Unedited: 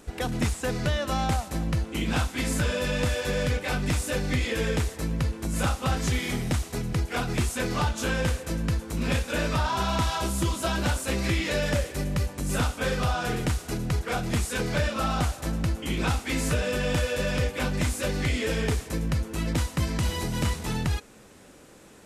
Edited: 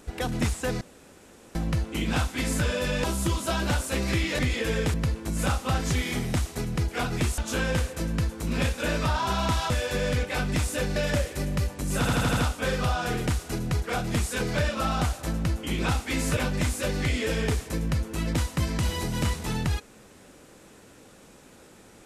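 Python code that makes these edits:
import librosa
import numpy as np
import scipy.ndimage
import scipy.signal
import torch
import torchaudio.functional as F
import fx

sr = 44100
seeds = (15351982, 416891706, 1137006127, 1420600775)

y = fx.edit(x, sr, fx.room_tone_fill(start_s=0.81, length_s=0.74),
    fx.swap(start_s=3.04, length_s=1.26, other_s=10.2, other_length_s=1.35),
    fx.cut(start_s=4.85, length_s=0.26),
    fx.cut(start_s=7.55, length_s=0.33),
    fx.stutter(start_s=12.56, slice_s=0.08, count=6),
    fx.cut(start_s=16.56, length_s=1.01), tone=tone)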